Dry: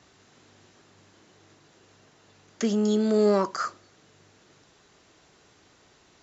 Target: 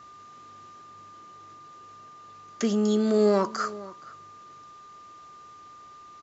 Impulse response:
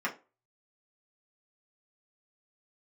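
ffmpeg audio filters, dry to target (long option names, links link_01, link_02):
-filter_complex "[0:a]aeval=exprs='val(0)+0.00501*sin(2*PI*1200*n/s)':channel_layout=same,asplit=2[link_01][link_02];[link_02]adelay=472.3,volume=-18dB,highshelf=frequency=4000:gain=-10.6[link_03];[link_01][link_03]amix=inputs=2:normalize=0"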